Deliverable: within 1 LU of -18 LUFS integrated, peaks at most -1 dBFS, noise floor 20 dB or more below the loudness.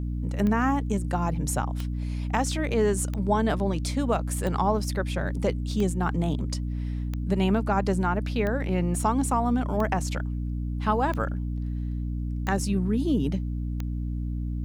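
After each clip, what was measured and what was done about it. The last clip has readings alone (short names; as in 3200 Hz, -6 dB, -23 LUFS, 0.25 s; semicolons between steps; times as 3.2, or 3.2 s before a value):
clicks 11; hum 60 Hz; harmonics up to 300 Hz; hum level -27 dBFS; loudness -27.0 LUFS; peak -10.5 dBFS; loudness target -18.0 LUFS
-> de-click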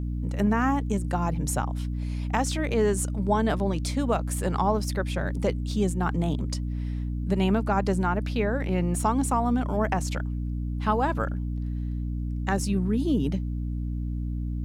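clicks 0; hum 60 Hz; harmonics up to 300 Hz; hum level -27 dBFS
-> notches 60/120/180/240/300 Hz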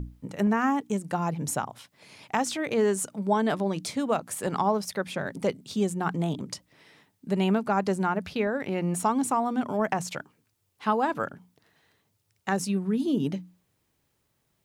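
hum none; loudness -28.0 LUFS; peak -11.5 dBFS; loudness target -18.0 LUFS
-> gain +10 dB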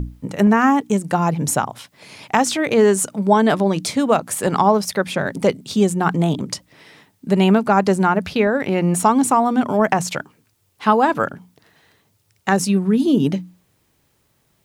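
loudness -18.0 LUFS; peak -1.5 dBFS; noise floor -64 dBFS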